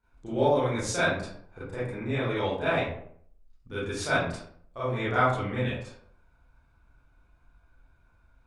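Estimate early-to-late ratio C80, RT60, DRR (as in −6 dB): 5.0 dB, 0.65 s, −13.0 dB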